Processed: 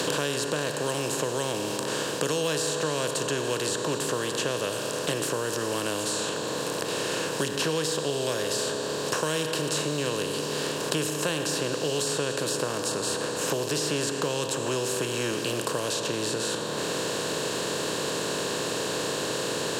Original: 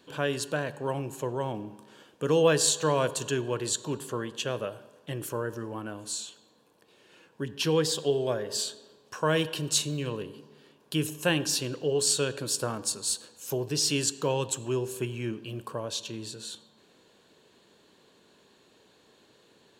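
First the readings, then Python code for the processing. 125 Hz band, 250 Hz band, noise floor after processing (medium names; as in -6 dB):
-0.5 dB, +2.0 dB, -31 dBFS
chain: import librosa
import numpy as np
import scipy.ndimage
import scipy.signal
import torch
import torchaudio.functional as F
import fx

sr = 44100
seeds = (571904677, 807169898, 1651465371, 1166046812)

y = fx.bin_compress(x, sr, power=0.4)
y = fx.band_squash(y, sr, depth_pct=100)
y = y * librosa.db_to_amplitude(-6.0)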